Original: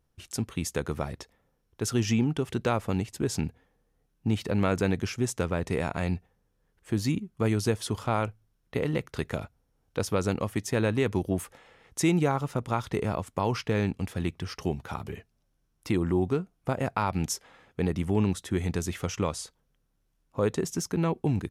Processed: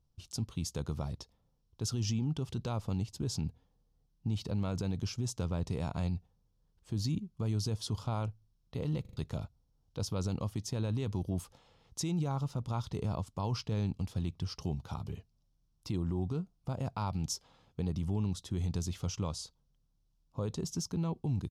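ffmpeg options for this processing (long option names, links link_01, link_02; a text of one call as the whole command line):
ffmpeg -i in.wav -filter_complex "[0:a]asplit=5[link_01][link_02][link_03][link_04][link_05];[link_01]atrim=end=9.052[link_06];[link_02]atrim=start=9.008:end=9.052[link_07];[link_03]atrim=start=9.008:end=9.052[link_08];[link_04]atrim=start=9.008:end=9.052[link_09];[link_05]atrim=start=9.168[link_10];[link_06][link_07]acrossfade=duration=0.004:curve1=hsin:curve2=hsin[link_11];[link_11][link_08]acrossfade=duration=0.004:curve1=hsin:curve2=hsin[link_12];[link_12][link_09]acrossfade=duration=0.004:curve1=hsin:curve2=hsin[link_13];[link_13][link_10]acrossfade=duration=0.004:curve1=hsin:curve2=hsin,firequalizer=gain_entry='entry(140,0);entry(220,-5);entry(380,-10);entry(1000,-7);entry(1800,-20);entry(3000,-10);entry(4800,-6);entry(8700,-11)':delay=0.05:min_phase=1,alimiter=level_in=2dB:limit=-24dB:level=0:latency=1:release=22,volume=-2dB,equalizer=frequency=4500:width_type=o:width=1.3:gain=5" out.wav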